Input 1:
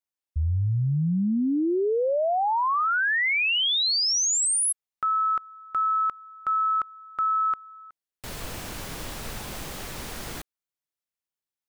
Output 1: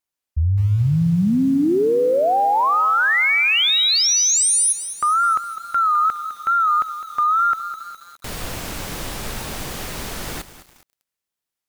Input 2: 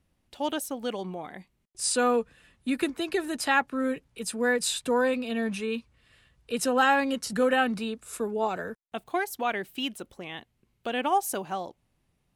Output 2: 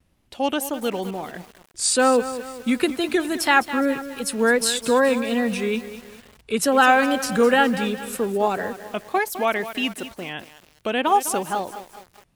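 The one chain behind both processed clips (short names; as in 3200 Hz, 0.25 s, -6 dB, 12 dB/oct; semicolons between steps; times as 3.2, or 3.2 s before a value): wow and flutter 120 cents; lo-fi delay 0.207 s, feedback 55%, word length 7-bit, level -12 dB; gain +6.5 dB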